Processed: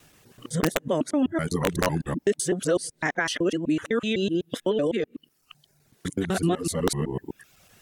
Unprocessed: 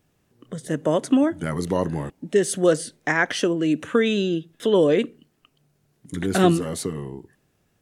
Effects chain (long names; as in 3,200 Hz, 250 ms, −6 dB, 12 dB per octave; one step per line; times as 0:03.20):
reversed piece by piece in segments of 126 ms
reverb reduction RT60 0.62 s
in parallel at +3 dB: downward compressor 8 to 1, threshold −30 dBFS, peak gain reduction 17.5 dB
on the sum: brickwall limiter −10 dBFS, peak gain reduction 6.5 dB
speech leveller 0.5 s
wrap-around overflow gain 9 dB
one half of a high-frequency compander encoder only
level −3.5 dB